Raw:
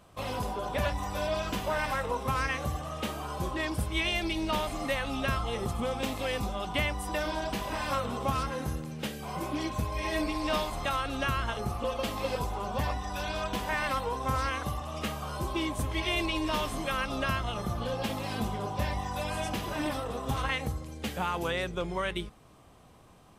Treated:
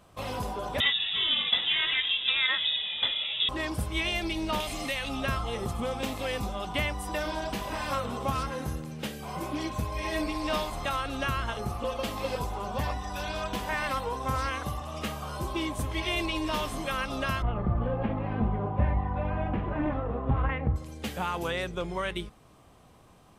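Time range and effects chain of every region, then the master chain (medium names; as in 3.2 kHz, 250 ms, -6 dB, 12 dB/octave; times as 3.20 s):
0.80–3.49 s: small resonant body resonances 310/1700 Hz, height 16 dB, ringing for 40 ms + frequency inversion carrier 3.7 kHz
4.60–5.09 s: resonant high shelf 1.9 kHz +6.5 dB, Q 1.5 + compression 2:1, threshold -30 dBFS
17.42–20.76 s: low-pass 2.3 kHz 24 dB/octave + tilt EQ -2 dB/octave
whole clip: none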